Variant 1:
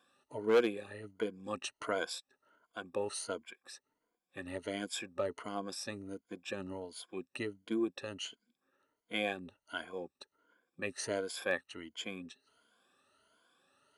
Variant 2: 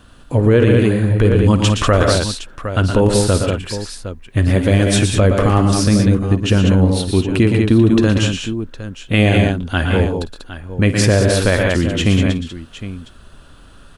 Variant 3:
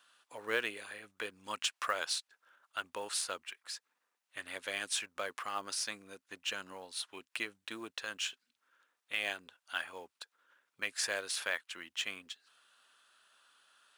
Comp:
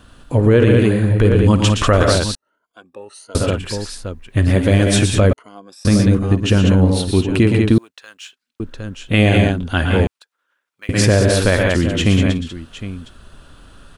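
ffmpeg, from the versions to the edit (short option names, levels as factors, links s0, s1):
-filter_complex "[0:a]asplit=2[s0][s1];[2:a]asplit=2[s2][s3];[1:a]asplit=5[s4][s5][s6][s7][s8];[s4]atrim=end=2.352[s9];[s0]atrim=start=2.348:end=3.352[s10];[s5]atrim=start=3.348:end=5.332[s11];[s1]atrim=start=5.328:end=5.852[s12];[s6]atrim=start=5.848:end=7.782[s13];[s2]atrim=start=7.778:end=8.602[s14];[s7]atrim=start=8.598:end=10.072[s15];[s3]atrim=start=10.068:end=10.892[s16];[s8]atrim=start=10.888[s17];[s9][s10]acrossfade=d=0.004:c1=hsin:c2=hsin[s18];[s18][s11]acrossfade=d=0.004:c1=hsin:c2=hsin[s19];[s19][s12]acrossfade=d=0.004:c1=hsin:c2=hsin[s20];[s20][s13]acrossfade=d=0.004:c1=hsin:c2=hsin[s21];[s21][s14]acrossfade=d=0.004:c1=hsin:c2=hsin[s22];[s22][s15]acrossfade=d=0.004:c1=hsin:c2=hsin[s23];[s23][s16]acrossfade=d=0.004:c1=hsin:c2=hsin[s24];[s24][s17]acrossfade=d=0.004:c1=hsin:c2=hsin"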